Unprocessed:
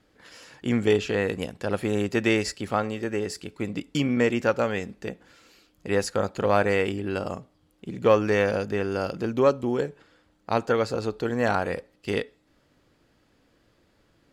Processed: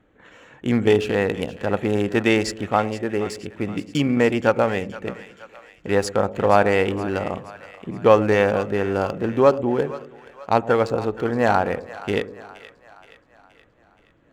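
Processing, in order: Wiener smoothing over 9 samples; split-band echo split 630 Hz, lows 0.112 s, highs 0.473 s, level -14.5 dB; dynamic EQ 820 Hz, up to +5 dB, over -38 dBFS, Q 2.6; gain +4 dB

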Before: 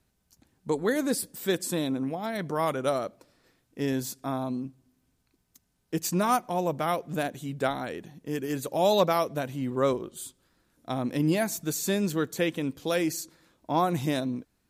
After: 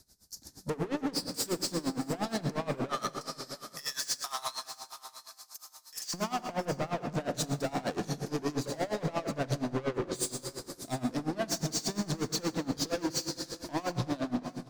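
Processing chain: 2.89–6.14 HPF 1100 Hz 24 dB/oct; treble ducked by the level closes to 2000 Hz, closed at -25 dBFS; resonant high shelf 3700 Hz +9.5 dB, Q 3; AGC gain up to 12 dB; limiter -21 dBFS, peak gain reduction 19 dB; soft clip -34.5 dBFS, distortion -7 dB; feedback echo 0.664 s, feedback 28%, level -14 dB; reverb RT60 2.5 s, pre-delay 36 ms, DRR 5 dB; dB-linear tremolo 8.5 Hz, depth 20 dB; gain +7.5 dB

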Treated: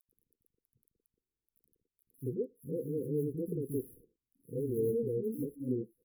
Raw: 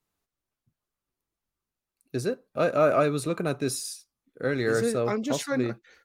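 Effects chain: median filter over 9 samples; high shelf 7300 Hz +6.5 dB; crackle 12/s -36 dBFS; brick-wall FIR band-stop 510–10000 Hz; three bands offset in time highs, lows, mids 80/120 ms, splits 230/3900 Hz; gain -5 dB

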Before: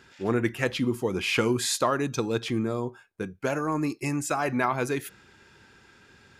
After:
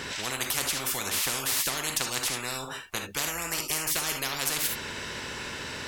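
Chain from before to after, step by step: non-linear reverb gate 0.1 s flat, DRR 7 dB; speed mistake 44.1 kHz file played as 48 kHz; spectral compressor 10:1

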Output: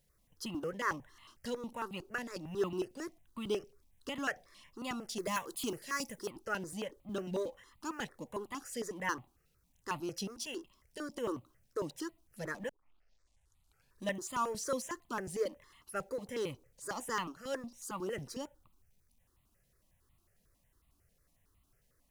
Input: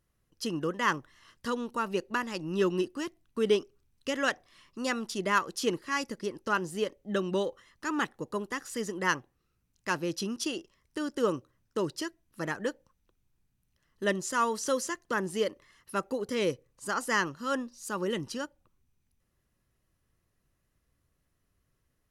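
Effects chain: G.711 law mismatch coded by mu; de-esser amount 60%; 5.18–6.31 high shelf 6300 Hz +11 dB; 12.69 tape start 1.39 s; step phaser 11 Hz 320–1600 Hz; gain -5 dB

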